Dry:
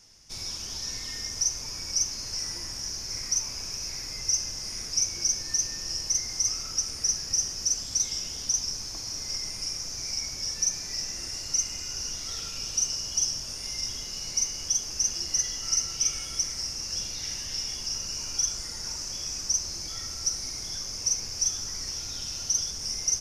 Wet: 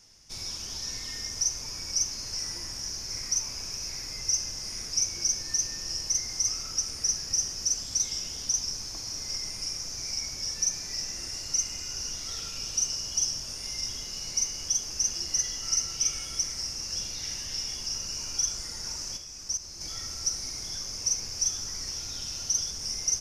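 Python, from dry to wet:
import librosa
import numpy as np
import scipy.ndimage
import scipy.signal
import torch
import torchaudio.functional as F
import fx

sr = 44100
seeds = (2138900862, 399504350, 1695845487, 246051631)

y = fx.level_steps(x, sr, step_db=14, at=(19.17, 19.81))
y = y * librosa.db_to_amplitude(-1.0)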